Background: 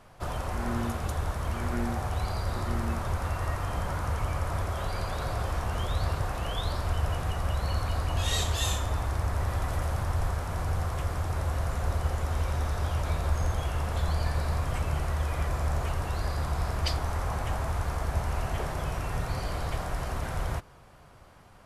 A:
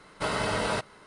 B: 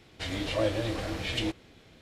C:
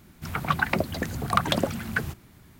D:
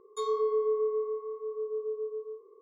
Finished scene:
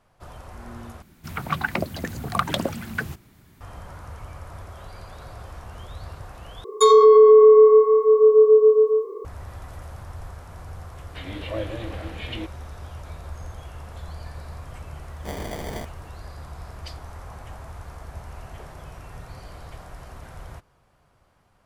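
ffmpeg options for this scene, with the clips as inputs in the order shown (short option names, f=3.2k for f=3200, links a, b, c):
-filter_complex "[0:a]volume=-9dB[a];[4:a]alimiter=level_in=25.5dB:limit=-1dB:release=50:level=0:latency=1[b];[2:a]lowpass=f=3.6k:w=0.5412,lowpass=f=3.6k:w=1.3066[c];[1:a]acrusher=samples=33:mix=1:aa=0.000001[d];[a]asplit=3[e][f][g];[e]atrim=end=1.024[h];[3:a]atrim=end=2.59,asetpts=PTS-STARTPTS,volume=-1dB[i];[f]atrim=start=3.606:end=6.644[j];[b]atrim=end=2.61,asetpts=PTS-STARTPTS,volume=-4.5dB[k];[g]atrim=start=9.246[l];[c]atrim=end=2.01,asetpts=PTS-STARTPTS,volume=-2.5dB,afade=t=in:d=0.004:c=hsin,afade=t=out:st=2.006:d=0.004:c=hsin,adelay=10950[m];[d]atrim=end=1.06,asetpts=PTS-STARTPTS,volume=-5dB,afade=t=in:d=0.004:c=hsin,afade=t=out:st=1.056:d=0.004:c=hsin,adelay=15040[n];[h][i]acrossfade=d=0.004:c1=hsin:c2=hsin[o];[o][j]acrossfade=d=0.004:c1=hsin:c2=hsin[p];[p][k]acrossfade=d=0.004:c1=hsin:c2=hsin[q];[q][l]acrossfade=d=0.004:c1=hsin:c2=hsin[r];[r][m][n]amix=inputs=3:normalize=0"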